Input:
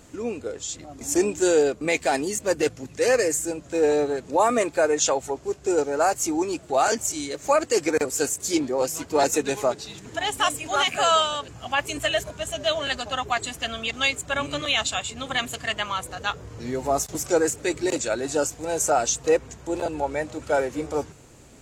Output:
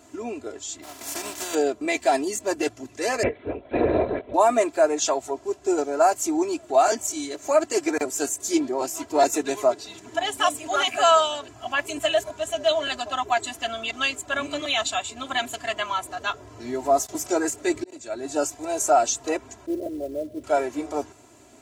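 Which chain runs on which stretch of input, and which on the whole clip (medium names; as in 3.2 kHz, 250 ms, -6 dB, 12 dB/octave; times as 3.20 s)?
0.82–1.53 s: spectral contrast reduction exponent 0.35 + compression 12:1, threshold -26 dBFS
3.23–4.34 s: small resonant body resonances 540/2200 Hz, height 12 dB, ringing for 35 ms + LPC vocoder at 8 kHz whisper
17.67–18.36 s: bass shelf 230 Hz +6 dB + slow attack 751 ms
19.66–20.44 s: steep low-pass 610 Hz 72 dB/octave + companded quantiser 6-bit
whole clip: high-pass 110 Hz 12 dB/octave; peaking EQ 800 Hz +5.5 dB 0.85 oct; comb 3 ms, depth 83%; trim -4 dB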